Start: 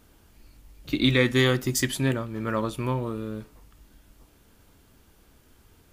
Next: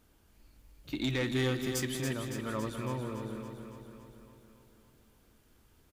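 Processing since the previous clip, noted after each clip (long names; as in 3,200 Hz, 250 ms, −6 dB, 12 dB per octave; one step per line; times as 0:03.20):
soft clipping −16.5 dBFS, distortion −15 dB
on a send: repeating echo 280 ms, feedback 60%, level −7.5 dB
on the sum: feedback echo at a low word length 198 ms, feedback 35%, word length 9 bits, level −14 dB
level −8.5 dB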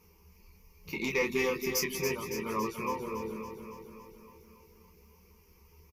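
reverb reduction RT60 0.57 s
EQ curve with evenly spaced ripples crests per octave 0.81, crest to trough 18 dB
ambience of single reflections 12 ms −5 dB, 27 ms −6 dB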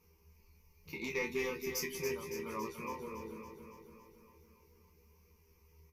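tuned comb filter 80 Hz, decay 0.2 s, harmonics all, mix 80%
level −1.5 dB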